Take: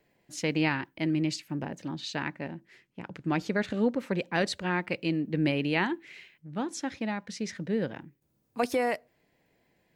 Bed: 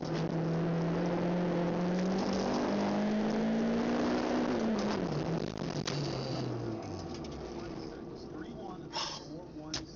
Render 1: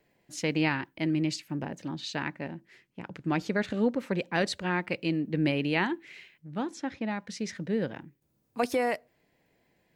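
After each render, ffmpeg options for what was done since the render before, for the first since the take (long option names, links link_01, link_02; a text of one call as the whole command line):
ffmpeg -i in.wav -filter_complex "[0:a]asettb=1/sr,asplit=3[link_01][link_02][link_03];[link_01]atrim=end=6.714[link_04];[link_02]atrim=start=6.71:end=7.11,asetpts=PTS-STARTPTS,afade=type=in:duration=0.004:curve=qsin,afade=type=out:start_time=0.396:duration=0.004:curve=qsin,lowpass=frequency=2700:poles=1[link_05];[link_03]atrim=start=7.106[link_06];[link_04][link_05]acrossfade=duration=0.004:curve1=hsin:curve2=qsin[link_07];[link_07][link_06]acrossfade=duration=0.004:curve1=qsin:curve2=hsin" out.wav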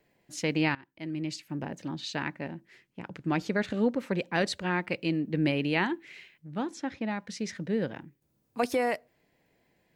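ffmpeg -i in.wav -filter_complex "[0:a]asplit=2[link_01][link_02];[link_01]atrim=end=0.75,asetpts=PTS-STARTPTS,afade=type=out:start_time=0.746:duration=0.004:curve=hsin:silence=0.0891251[link_03];[link_02]atrim=start=0.75,asetpts=PTS-STARTPTS,afade=type=in:duration=0.98:silence=0.0891251[link_04];[link_03][link_04]concat=n=2:v=0:a=1" out.wav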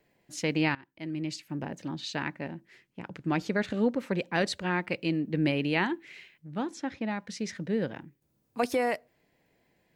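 ffmpeg -i in.wav -af anull out.wav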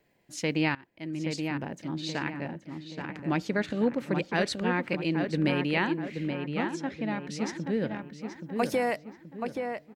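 ffmpeg -i in.wav -filter_complex "[0:a]asplit=2[link_01][link_02];[link_02]adelay=827,lowpass=frequency=2500:poles=1,volume=-5.5dB,asplit=2[link_03][link_04];[link_04]adelay=827,lowpass=frequency=2500:poles=1,volume=0.45,asplit=2[link_05][link_06];[link_06]adelay=827,lowpass=frequency=2500:poles=1,volume=0.45,asplit=2[link_07][link_08];[link_08]adelay=827,lowpass=frequency=2500:poles=1,volume=0.45,asplit=2[link_09][link_10];[link_10]adelay=827,lowpass=frequency=2500:poles=1,volume=0.45[link_11];[link_01][link_03][link_05][link_07][link_09][link_11]amix=inputs=6:normalize=0" out.wav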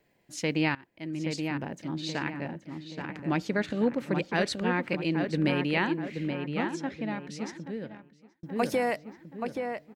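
ffmpeg -i in.wav -filter_complex "[0:a]asplit=2[link_01][link_02];[link_01]atrim=end=8.43,asetpts=PTS-STARTPTS,afade=type=out:start_time=6.81:duration=1.62[link_03];[link_02]atrim=start=8.43,asetpts=PTS-STARTPTS,afade=type=in:duration=0.004:curve=hsin[link_04];[link_03][link_04]concat=n=2:v=0:a=1" out.wav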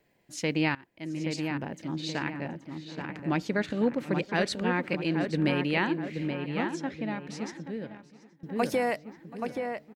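ffmpeg -i in.wav -af "aecho=1:1:730:0.0891" out.wav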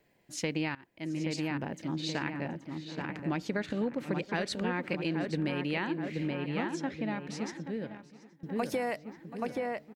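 ffmpeg -i in.wav -af "acompressor=threshold=-28dB:ratio=6" out.wav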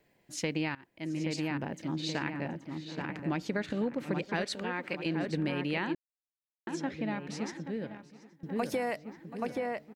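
ffmpeg -i in.wav -filter_complex "[0:a]asettb=1/sr,asplit=3[link_01][link_02][link_03];[link_01]atrim=end=4.444[link_04];[link_02]atrim=start=4.44:end=5.06,asetpts=PTS-STARTPTS,afade=type=in:duration=0.004:curve=qsin,afade=type=out:start_time=0.616:duration=0.004:curve=qsin,lowshelf=frequency=300:gain=-9.5[link_05];[link_03]atrim=start=5.056[link_06];[link_04][link_05]acrossfade=duration=0.004:curve1=hsin:curve2=qsin[link_07];[link_07][link_06]acrossfade=duration=0.004:curve1=qsin:curve2=hsin,asplit=3[link_08][link_09][link_10];[link_08]atrim=end=5.95,asetpts=PTS-STARTPTS,afade=type=out:start_time=5.946:duration=0.004:curve=hsin[link_11];[link_09]atrim=start=5.95:end=6.67,asetpts=PTS-STARTPTS,volume=0[link_12];[link_10]atrim=start=6.67,asetpts=PTS-STARTPTS,afade=type=in:duration=0.004:curve=hsin[link_13];[link_11][link_12][link_13]concat=n=3:v=0:a=1" out.wav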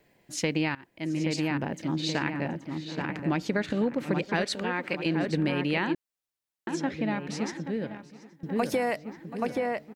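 ffmpeg -i in.wav -af "volume=5dB" out.wav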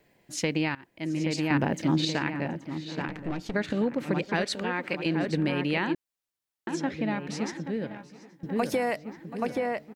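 ffmpeg -i in.wav -filter_complex "[0:a]asettb=1/sr,asplit=3[link_01][link_02][link_03];[link_01]atrim=end=1.504[link_04];[link_02]atrim=start=1.5:end=2.05,asetpts=PTS-STARTPTS,afade=type=in:duration=0.004:curve=qsin,afade=type=out:start_time=0.546:duration=0.004:curve=qsin,acontrast=34[link_05];[link_03]atrim=start=2.046[link_06];[link_04][link_05]acrossfade=duration=0.004:curve1=hsin:curve2=qsin[link_07];[link_07][link_06]acrossfade=duration=0.004:curve1=qsin:curve2=hsin,asettb=1/sr,asplit=3[link_08][link_09][link_10];[link_08]atrim=end=3.084[link_11];[link_09]atrim=start=3.08:end=3.54,asetpts=PTS-STARTPTS,afade=type=in:duration=0.004:curve=qsin,afade=type=out:start_time=0.456:duration=0.004:curve=qsin,aeval=exprs='(tanh(20*val(0)+0.7)-tanh(0.7))/20':channel_layout=same[link_12];[link_10]atrim=start=3.536[link_13];[link_11][link_12]acrossfade=duration=0.004:curve1=hsin:curve2=qsin[link_14];[link_14][link_13]acrossfade=duration=0.004:curve1=qsin:curve2=hsin,asettb=1/sr,asplit=3[link_15][link_16][link_17];[link_15]atrim=end=7.904[link_18];[link_16]atrim=start=7.9:end=8.46,asetpts=PTS-STARTPTS,afade=type=in:duration=0.004:curve=qsin,afade=type=out:start_time=0.556:duration=0.004:curve=qsin,asplit=2[link_19][link_20];[link_20]adelay=16,volume=-6.5dB[link_21];[link_19][link_21]amix=inputs=2:normalize=0,atrim=end_sample=24696[link_22];[link_17]atrim=start=8.456[link_23];[link_18][link_22]acrossfade=duration=0.004:curve1=hsin:curve2=qsin[link_24];[link_24][link_23]acrossfade=duration=0.004:curve1=qsin:curve2=hsin" out.wav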